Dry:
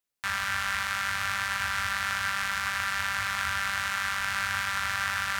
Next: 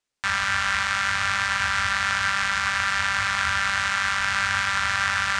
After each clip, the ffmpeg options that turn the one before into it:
-af "lowpass=f=8300:w=0.5412,lowpass=f=8300:w=1.3066,volume=2"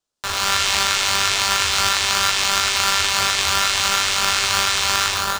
-filter_complex "[0:a]acrossover=split=290|2600[s0][s1][s2];[s1]acrusher=samples=16:mix=1:aa=0.000001[s3];[s2]dynaudnorm=f=150:g=5:m=4.73[s4];[s0][s3][s4]amix=inputs=3:normalize=0,asplit=2[s5][s6];[s6]adelay=13,volume=0.355[s7];[s5][s7]amix=inputs=2:normalize=0,volume=1.12"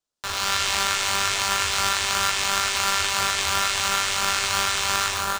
-af "aecho=1:1:366:0.299,volume=0.596"

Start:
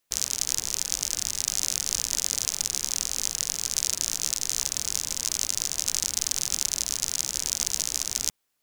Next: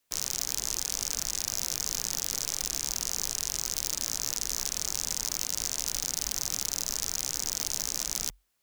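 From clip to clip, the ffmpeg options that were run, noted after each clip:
-af "aeval=exprs='0.266*(abs(mod(val(0)/0.266+3,4)-2)-1)':c=same,afreqshift=-47"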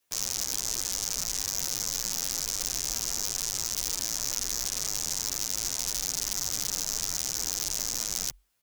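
-filter_complex "[0:a]asplit=2[s0][s1];[s1]adelay=10,afreqshift=-0.65[s2];[s0][s2]amix=inputs=2:normalize=1,volume=1.58"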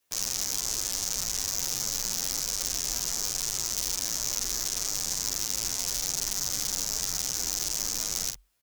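-filter_complex "[0:a]asplit=2[s0][s1];[s1]adelay=45,volume=0.447[s2];[s0][s2]amix=inputs=2:normalize=0"

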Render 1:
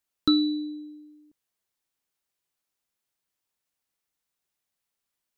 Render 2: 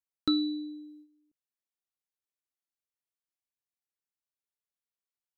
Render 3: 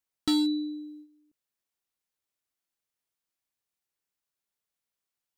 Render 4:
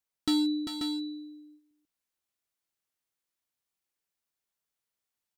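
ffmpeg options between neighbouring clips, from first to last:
-af "agate=range=0.316:threshold=0.00398:ratio=16:detection=peak,volume=0.531"
-af "asoftclip=type=hard:threshold=0.0447,volume=1.88"
-af "aecho=1:1:395|536:0.447|0.473,volume=0.841"

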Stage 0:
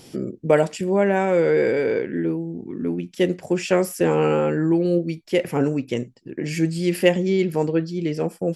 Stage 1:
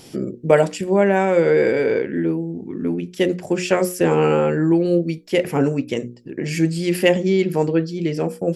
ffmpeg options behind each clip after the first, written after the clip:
-af "bandreject=f=60:t=h:w=6,bandreject=f=120:t=h:w=6,bandreject=f=180:t=h:w=6,bandreject=f=240:t=h:w=6,bandreject=f=300:t=h:w=6,bandreject=f=360:t=h:w=6,bandreject=f=420:t=h:w=6,bandreject=f=480:t=h:w=6,bandreject=f=540:t=h:w=6,volume=1.41"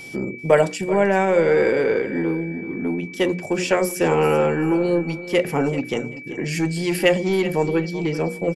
-filter_complex "[0:a]acrossover=split=450[s0][s1];[s0]asoftclip=type=tanh:threshold=0.106[s2];[s2][s1]amix=inputs=2:normalize=0,aecho=1:1:385|770:0.188|0.0396,aeval=exprs='val(0)+0.0158*sin(2*PI*2300*n/s)':c=same"

